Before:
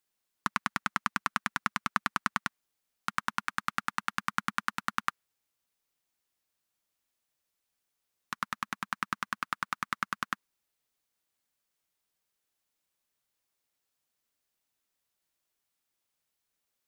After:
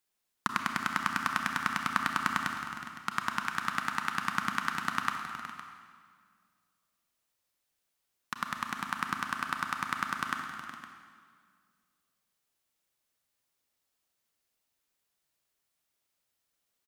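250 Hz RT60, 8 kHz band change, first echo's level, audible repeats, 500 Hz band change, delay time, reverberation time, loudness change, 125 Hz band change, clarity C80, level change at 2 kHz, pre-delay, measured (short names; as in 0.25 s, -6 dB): 2.0 s, +1.5 dB, -13.0 dB, 2, +2.5 dB, 0.367 s, 1.9 s, +1.5 dB, +2.5 dB, 4.5 dB, +1.5 dB, 29 ms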